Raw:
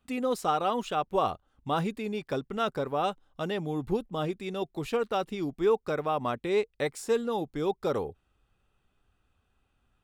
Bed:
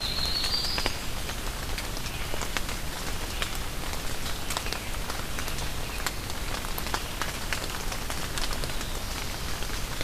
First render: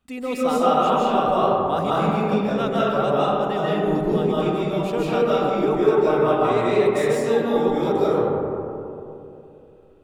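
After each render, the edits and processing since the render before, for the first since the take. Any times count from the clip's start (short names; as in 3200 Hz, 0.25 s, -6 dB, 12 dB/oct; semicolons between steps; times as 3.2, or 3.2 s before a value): digital reverb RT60 2.9 s, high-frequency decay 0.3×, pre-delay 0.115 s, DRR -8.5 dB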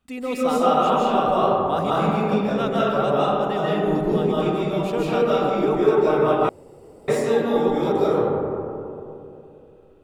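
6.49–7.08 room tone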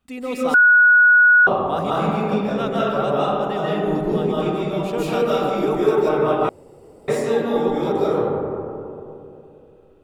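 0.54–1.47 bleep 1460 Hz -8.5 dBFS; 4.98–6.09 high shelf 6400 Hz +10 dB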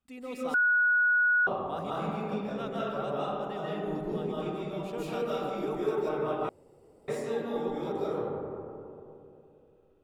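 gain -12.5 dB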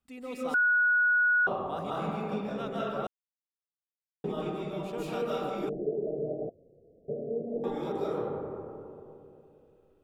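3.07–4.24 mute; 5.69–7.64 rippled Chebyshev low-pass 700 Hz, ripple 3 dB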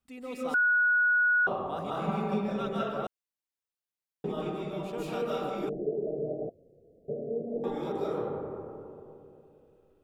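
2.07–2.83 comb 5.2 ms, depth 71%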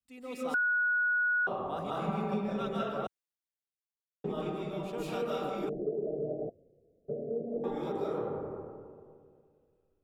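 compressor 2.5:1, threshold -30 dBFS, peak gain reduction 5 dB; three-band expander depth 40%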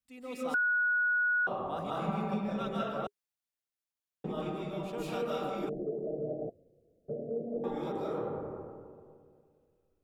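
notch 410 Hz, Q 12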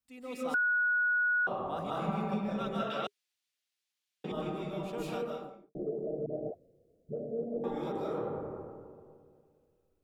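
2.9–4.32 weighting filter D; 5.02–5.75 studio fade out; 6.26–7.44 dispersion highs, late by 83 ms, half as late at 660 Hz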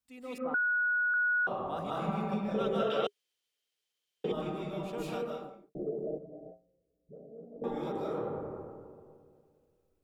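0.38–1.14 LPF 1800 Hz 24 dB/oct; 2.54–4.33 small resonant body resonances 450/3100 Hz, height 12 dB, ringing for 25 ms; 6.18–7.62 resonator 59 Hz, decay 0.29 s, harmonics odd, mix 90%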